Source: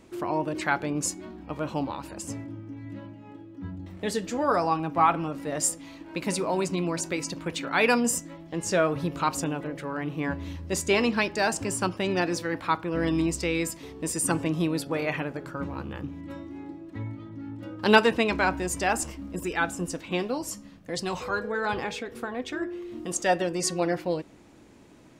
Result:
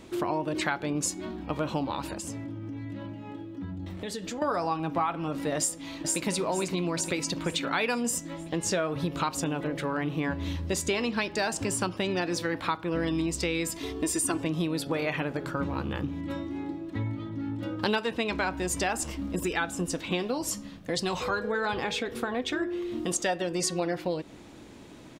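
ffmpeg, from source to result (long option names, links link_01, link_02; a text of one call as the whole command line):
ffmpeg -i in.wav -filter_complex "[0:a]asettb=1/sr,asplit=3[link_01][link_02][link_03];[link_01]atrim=end=2.134[link_04];[link_02]atrim=start=2.13:end=4.42,asetpts=PTS-STARTPTS,afade=type=in:duration=0.004:curve=qsin,afade=type=out:start_time=2.286:duration=0.004:curve=qsin,acompressor=threshold=-38dB:ratio=6:attack=3.2:release=140:knee=1:detection=peak[link_05];[link_03]atrim=start=4.416[link_06];[link_04][link_05]acrossfade=duration=0.004:curve1=hsin:curve2=qsin[link_07];[link_07][link_06]acrossfade=duration=0.004:curve1=qsin:curve2=hsin,asplit=2[link_08][link_09];[link_09]afade=type=in:start_time=5.58:duration=0.01,afade=type=out:start_time=6.27:duration=0.01,aecho=0:1:460|920|1380|1840|2300|2760:0.595662|0.297831|0.148916|0.0744578|0.0372289|0.0186144[link_10];[link_08][link_10]amix=inputs=2:normalize=0,asettb=1/sr,asplit=3[link_11][link_12][link_13];[link_11]atrim=end=13.764[link_14];[link_12]atrim=start=13.76:end=14.4,asetpts=PTS-STARTPTS,afade=type=in:duration=0.004:curve=qsin,afade=type=out:start_time=0.636:duration=0.004:curve=qsin,aecho=1:1:2.9:0.65,atrim=end_sample=28224[link_15];[link_13]atrim=start=14.396[link_16];[link_14][link_15]acrossfade=duration=0.004:curve1=hsin:curve2=qsin[link_17];[link_17][link_16]acrossfade=duration=0.004:curve1=qsin:curve2=hsin,equalizer=frequency=3600:width_type=o:width=0.53:gain=5,acompressor=threshold=-31dB:ratio=5,volume=5dB" out.wav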